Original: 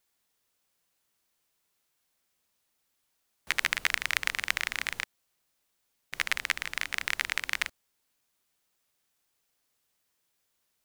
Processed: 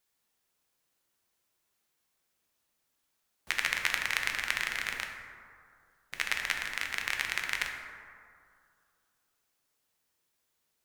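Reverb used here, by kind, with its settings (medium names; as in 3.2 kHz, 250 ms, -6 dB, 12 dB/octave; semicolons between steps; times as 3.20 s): plate-style reverb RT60 2.3 s, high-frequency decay 0.35×, DRR 2 dB; trim -3 dB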